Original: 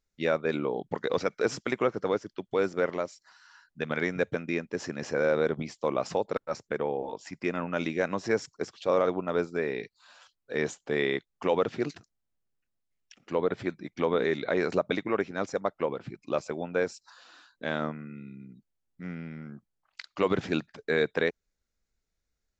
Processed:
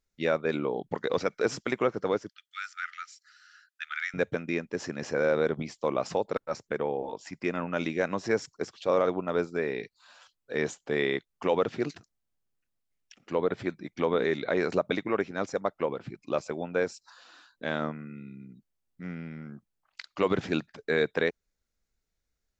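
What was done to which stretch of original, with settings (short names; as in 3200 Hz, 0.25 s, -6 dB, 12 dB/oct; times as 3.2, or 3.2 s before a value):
2.29–4.14 brick-wall FIR high-pass 1200 Hz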